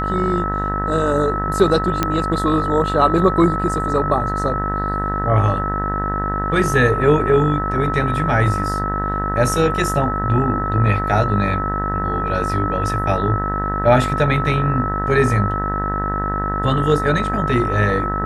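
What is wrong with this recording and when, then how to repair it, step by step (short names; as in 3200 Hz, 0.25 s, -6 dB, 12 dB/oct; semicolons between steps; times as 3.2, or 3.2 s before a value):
buzz 50 Hz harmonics 39 -24 dBFS
tone 1300 Hz -22 dBFS
2.03 pop -3 dBFS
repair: de-click; de-hum 50 Hz, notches 39; notch 1300 Hz, Q 30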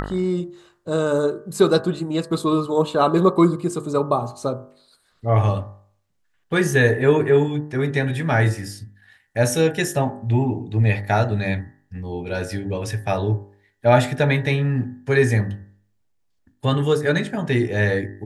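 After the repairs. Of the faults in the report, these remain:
none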